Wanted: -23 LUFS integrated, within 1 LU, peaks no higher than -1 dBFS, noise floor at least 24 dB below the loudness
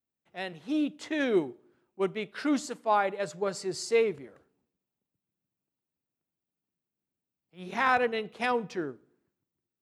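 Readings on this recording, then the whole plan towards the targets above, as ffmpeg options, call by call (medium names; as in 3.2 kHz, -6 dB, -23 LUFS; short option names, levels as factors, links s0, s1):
loudness -30.0 LUFS; peak level -13.0 dBFS; loudness target -23.0 LUFS
-> -af "volume=2.24"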